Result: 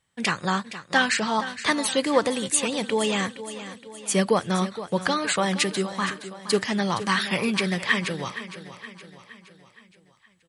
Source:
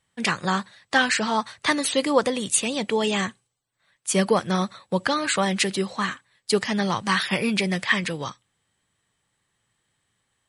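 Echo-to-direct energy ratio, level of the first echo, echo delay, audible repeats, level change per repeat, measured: -11.5 dB, -13.0 dB, 468 ms, 4, -6.0 dB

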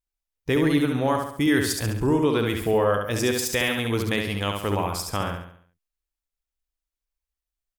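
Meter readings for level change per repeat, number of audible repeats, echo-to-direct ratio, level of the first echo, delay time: -7.0 dB, 5, -3.5 dB, -4.5 dB, 69 ms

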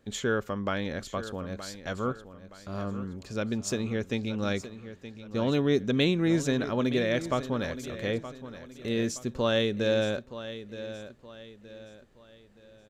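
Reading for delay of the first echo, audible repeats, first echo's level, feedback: 921 ms, 3, -13.0 dB, 38%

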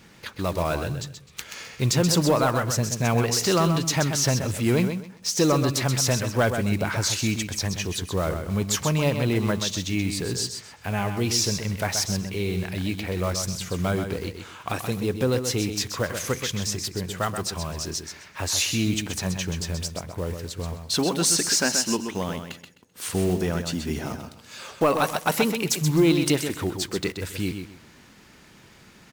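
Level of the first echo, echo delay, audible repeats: -7.5 dB, 129 ms, 3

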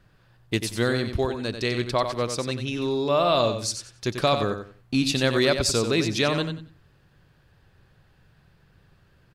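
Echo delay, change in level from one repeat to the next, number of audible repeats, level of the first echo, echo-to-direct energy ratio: 92 ms, -13.0 dB, 3, -8.0 dB, -8.0 dB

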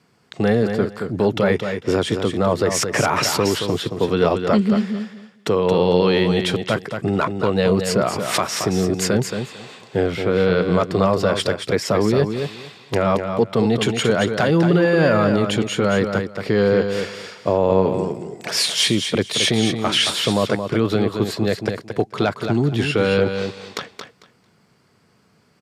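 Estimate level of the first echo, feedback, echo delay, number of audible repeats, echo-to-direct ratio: -7.0 dB, 18%, 224 ms, 2, -7.0 dB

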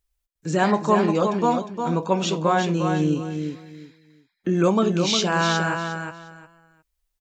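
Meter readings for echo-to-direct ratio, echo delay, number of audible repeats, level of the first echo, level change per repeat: -6.5 dB, 356 ms, 3, -6.5 dB, -13.5 dB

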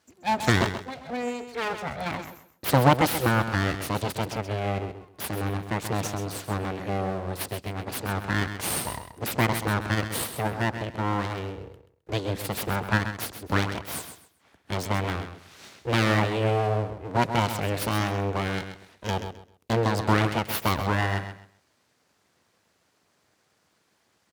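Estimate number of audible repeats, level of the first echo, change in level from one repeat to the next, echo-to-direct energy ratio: 2, -9.5 dB, -13.0 dB, -9.5 dB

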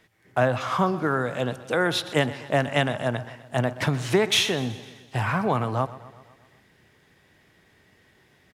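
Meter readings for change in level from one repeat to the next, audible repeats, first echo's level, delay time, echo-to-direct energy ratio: -4.5 dB, 4, -17.0 dB, 126 ms, -15.0 dB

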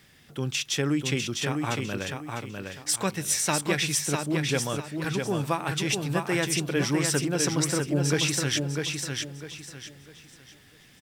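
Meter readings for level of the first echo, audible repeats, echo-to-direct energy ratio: -4.5 dB, 3, -4.0 dB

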